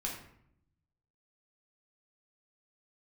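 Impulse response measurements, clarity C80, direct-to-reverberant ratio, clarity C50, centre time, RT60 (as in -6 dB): 8.0 dB, -2.5 dB, 4.5 dB, 34 ms, 0.70 s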